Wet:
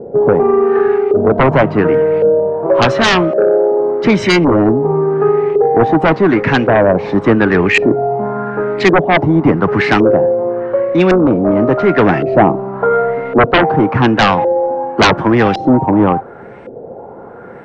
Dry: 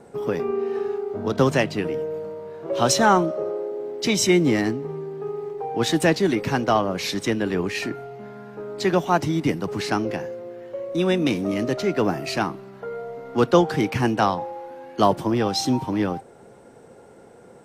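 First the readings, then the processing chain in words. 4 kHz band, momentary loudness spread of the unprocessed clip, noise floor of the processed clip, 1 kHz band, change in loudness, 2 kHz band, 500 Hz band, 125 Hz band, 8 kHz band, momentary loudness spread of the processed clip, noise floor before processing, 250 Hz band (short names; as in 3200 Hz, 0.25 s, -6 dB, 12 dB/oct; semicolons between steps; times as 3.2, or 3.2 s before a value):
+7.0 dB, 16 LU, -33 dBFS, +10.5 dB, +11.0 dB, +13.0 dB, +13.0 dB, +10.5 dB, n/a, 4 LU, -48 dBFS, +10.5 dB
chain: LFO low-pass saw up 0.9 Hz 470–2500 Hz; sine folder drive 15 dB, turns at 2 dBFS; vocal rider within 5 dB 0.5 s; gain -5.5 dB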